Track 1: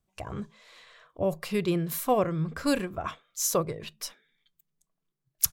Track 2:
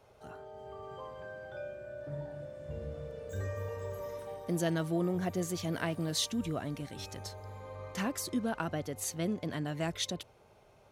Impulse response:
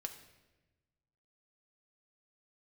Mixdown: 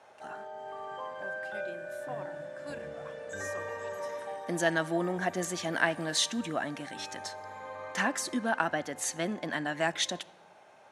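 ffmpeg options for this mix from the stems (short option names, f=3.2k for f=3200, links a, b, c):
-filter_complex "[0:a]acrusher=bits=7:mix=0:aa=0.000001,volume=-18dB[a];[1:a]volume=3dB,asplit=2[b][c];[c]volume=-7.5dB[d];[2:a]atrim=start_sample=2205[e];[d][e]afir=irnorm=-1:irlink=0[f];[a][b][f]amix=inputs=3:normalize=0,highpass=290,equalizer=f=430:t=q:w=4:g=-8,equalizer=f=820:t=q:w=4:g=5,equalizer=f=1.7k:t=q:w=4:g=9,equalizer=f=4.7k:t=q:w=4:g=-3,lowpass=f=9.9k:w=0.5412,lowpass=f=9.9k:w=1.3066"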